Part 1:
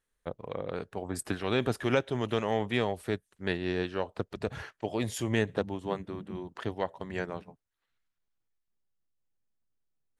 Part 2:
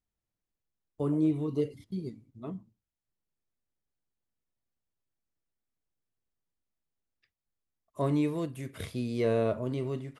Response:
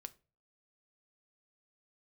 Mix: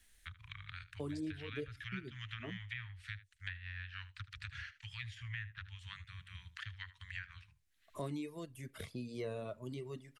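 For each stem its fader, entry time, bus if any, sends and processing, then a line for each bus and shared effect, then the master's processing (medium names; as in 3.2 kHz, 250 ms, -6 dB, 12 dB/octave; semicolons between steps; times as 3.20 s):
-4.0 dB, 0.00 s, no send, echo send -17.5 dB, inverse Chebyshev band-stop 230–710 Hz, stop band 60 dB; low-pass that closes with the level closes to 1.7 kHz, closed at -36 dBFS
-9.0 dB, 0.00 s, no send, no echo send, reverb removal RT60 1.3 s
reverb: none
echo: delay 76 ms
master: three bands compressed up and down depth 70%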